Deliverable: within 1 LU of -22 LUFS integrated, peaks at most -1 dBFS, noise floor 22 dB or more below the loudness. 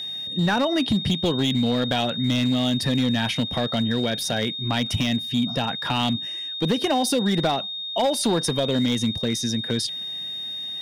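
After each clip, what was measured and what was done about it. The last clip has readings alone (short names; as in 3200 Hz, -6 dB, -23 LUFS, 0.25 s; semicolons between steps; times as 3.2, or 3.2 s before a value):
clipped 1.9%; flat tops at -15.5 dBFS; steady tone 3700 Hz; tone level -29 dBFS; loudness -23.0 LUFS; peak -15.5 dBFS; loudness target -22.0 LUFS
-> clip repair -15.5 dBFS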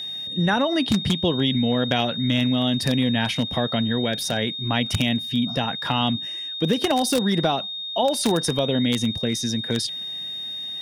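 clipped 0.0%; steady tone 3700 Hz; tone level -29 dBFS
-> notch 3700 Hz, Q 30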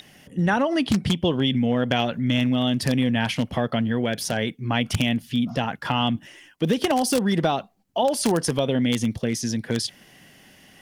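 steady tone none; loudness -23.5 LUFS; peak -6.0 dBFS; loudness target -22.0 LUFS
-> gain +1.5 dB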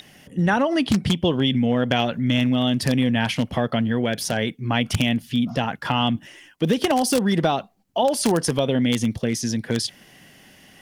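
loudness -22.0 LUFS; peak -4.5 dBFS; noise floor -52 dBFS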